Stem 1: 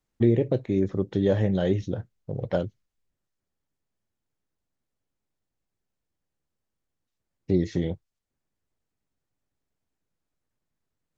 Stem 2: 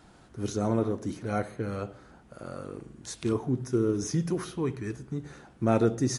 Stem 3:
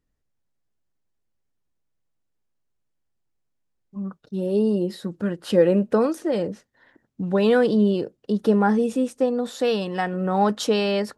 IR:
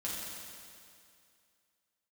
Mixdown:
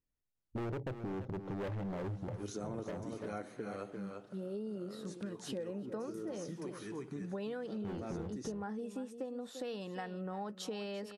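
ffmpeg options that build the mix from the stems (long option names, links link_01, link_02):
-filter_complex "[0:a]afwtdn=0.0126,bandreject=frequency=1800:width=12,volume=27.5dB,asoftclip=hard,volume=-27.5dB,adelay=350,volume=-1.5dB,asplit=2[link_01][link_02];[link_02]volume=-11.5dB[link_03];[1:a]highpass=200,adelay=2000,volume=-3.5dB,asplit=2[link_04][link_05];[link_05]volume=-8dB[link_06];[2:a]volume=-13dB,asplit=3[link_07][link_08][link_09];[link_08]volume=-15dB[link_10];[link_09]apad=whole_len=360752[link_11];[link_04][link_11]sidechaincompress=threshold=-48dB:ratio=8:attack=16:release=722[link_12];[link_03][link_06][link_10]amix=inputs=3:normalize=0,aecho=0:1:343:1[link_13];[link_01][link_12][link_07][link_13]amix=inputs=4:normalize=0,acompressor=threshold=-38dB:ratio=6"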